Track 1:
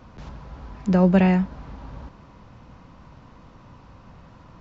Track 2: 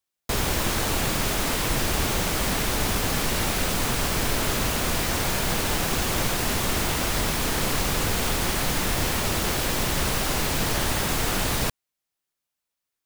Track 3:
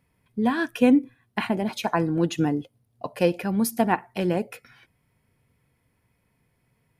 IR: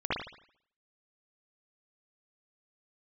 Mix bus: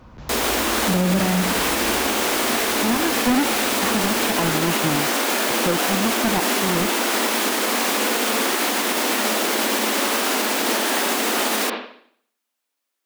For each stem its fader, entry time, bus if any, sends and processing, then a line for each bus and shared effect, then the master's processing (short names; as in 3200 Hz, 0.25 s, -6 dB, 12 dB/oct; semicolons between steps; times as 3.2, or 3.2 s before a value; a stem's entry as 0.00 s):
0.0 dB, 0.00 s, send -14.5 dB, dry
+3.0 dB, 0.00 s, send -9.5 dB, steep high-pass 210 Hz 96 dB/oct
-1.0 dB, 2.45 s, no send, half-waves squared off; treble ducked by the level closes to 2600 Hz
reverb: on, pre-delay 55 ms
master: limiter -10.5 dBFS, peak gain reduction 9 dB